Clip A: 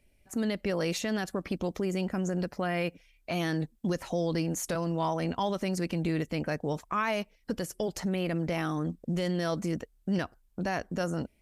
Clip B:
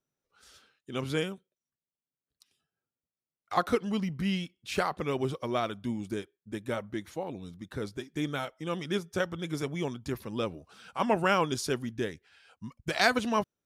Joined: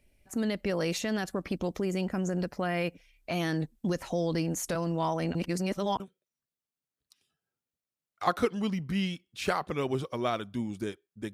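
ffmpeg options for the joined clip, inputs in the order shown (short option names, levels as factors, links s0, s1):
-filter_complex "[0:a]apad=whole_dur=11.33,atrim=end=11.33,asplit=2[s0][s1];[s0]atrim=end=5.352[s2];[s1]atrim=start=5.348:end=6.002,asetpts=PTS-STARTPTS,areverse[s3];[1:a]atrim=start=1.298:end=6.63[s4];[s2][s3]acrossfade=d=0.004:c1=hsin:c2=hsin[s5];[s5][s4]acrossfade=d=0.004:c1=hsin:c2=hsin"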